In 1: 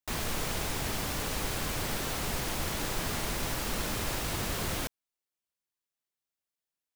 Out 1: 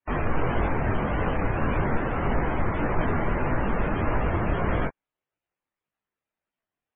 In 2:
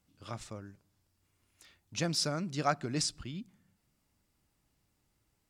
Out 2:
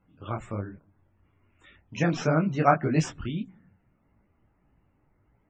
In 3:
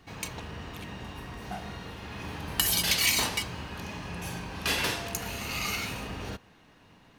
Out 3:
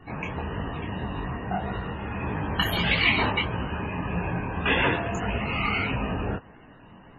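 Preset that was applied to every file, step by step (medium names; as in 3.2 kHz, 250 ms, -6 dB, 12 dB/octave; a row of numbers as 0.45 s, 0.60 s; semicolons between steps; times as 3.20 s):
median filter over 9 samples; loudest bins only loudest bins 64; detune thickener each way 58 cents; normalise loudness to -27 LUFS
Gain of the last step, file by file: +14.0 dB, +14.0 dB, +13.0 dB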